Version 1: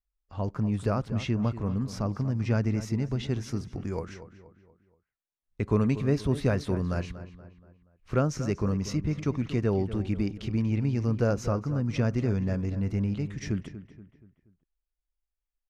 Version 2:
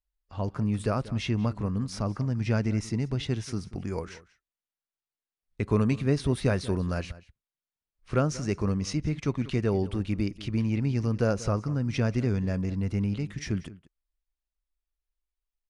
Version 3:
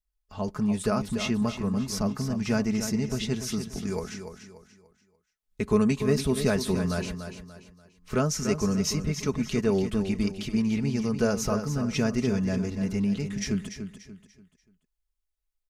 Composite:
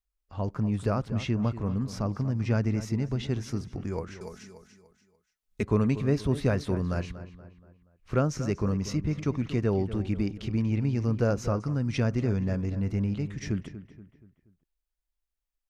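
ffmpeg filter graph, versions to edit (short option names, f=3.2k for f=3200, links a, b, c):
-filter_complex "[0:a]asplit=3[a][b][c];[a]atrim=end=4.212[d];[2:a]atrim=start=4.208:end=5.632[e];[b]atrim=start=5.628:end=11.602[f];[1:a]atrim=start=11.598:end=12.042[g];[c]atrim=start=12.038[h];[d][e]acrossfade=d=0.004:c1=hsin:c2=hsin[i];[i][f]acrossfade=d=0.004:c1=hsin:c2=hsin[j];[j][g]acrossfade=d=0.004:c1=hsin:c2=hsin[k];[k][h]acrossfade=d=0.004:c1=hsin:c2=hsin"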